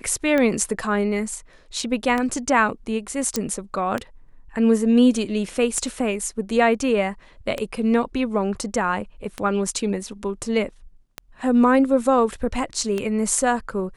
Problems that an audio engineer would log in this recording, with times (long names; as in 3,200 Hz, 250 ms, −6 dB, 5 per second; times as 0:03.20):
scratch tick 33 1/3 rpm −11 dBFS
0:03.36: click −8 dBFS